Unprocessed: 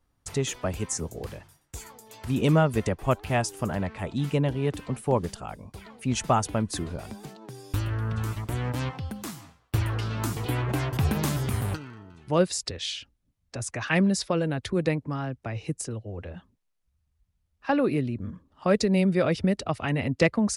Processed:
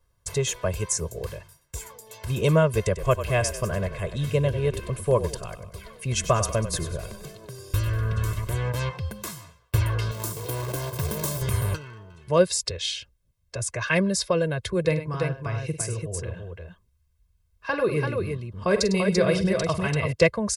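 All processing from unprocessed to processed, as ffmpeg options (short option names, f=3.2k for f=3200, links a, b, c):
-filter_complex "[0:a]asettb=1/sr,asplit=3[a][b][c];[a]atrim=end=2.834[d];[b]atrim=start=2.83:end=8.51,asetpts=PTS-STARTPTS,afade=t=in:d=0.004:c=qsin,afade=t=out:st=5.676:d=0.004:c=qsin,bandreject=f=890:w=6.6,asplit=6[e][f][g][h][i][j];[f]adelay=96,afreqshift=-37,volume=-11.5dB[k];[g]adelay=192,afreqshift=-74,volume=-18.2dB[l];[h]adelay=288,afreqshift=-111,volume=-25dB[m];[i]adelay=384,afreqshift=-148,volume=-31.7dB[n];[j]adelay=480,afreqshift=-185,volume=-38.5dB[o];[e][k][l][m][n][o]amix=inputs=6:normalize=0,atrim=end_sample=250488[p];[c]atrim=start=8.506[q];[d][p]acrossfade=d=0.004:c1=hsin:c2=qsin[r];[r][q]acrossfade=d=0.004:c1=qsin:c2=hsin,asettb=1/sr,asplit=3[s][t][u];[s]atrim=end=10.114[v];[t]atrim=start=10.11:end=11.42,asetpts=PTS-STARTPTS,afade=t=in:d=0.004:c=qsin,afade=t=out:st=1.306:d=0.004:c=qsin,highpass=f=230:p=1,equalizer=f=2.2k:t=o:w=1.7:g=-13,acrusher=bits=2:mode=log:mix=0:aa=0.000001[w];[u]atrim=start=11.416[x];[v][w]acrossfade=d=0.004:c1=hsin:c2=qsin[y];[y][x]acrossfade=d=0.004:c1=qsin:c2=hsin,asettb=1/sr,asplit=3[z][aa][ab];[z]atrim=end=14.804[ac];[aa]atrim=start=14.8:end=20.13,asetpts=PTS-STARTPTS,afade=t=in:d=0.004:c=qsin,afade=t=out:st=5.326:d=0.004:c=qsin,bandreject=f=570:w=9.5,aecho=1:1:46|102|339:0.266|0.251|0.596,atrim=end_sample=235053[ad];[ab]atrim=start=20.126[ae];[ac][ad]acrossfade=d=0.004:c1=hsin:c2=qsin[af];[af][ae]acrossfade=d=0.004:c1=qsin:c2=hsin,highshelf=f=6.9k:g=4.5,aecho=1:1:1.9:0.82"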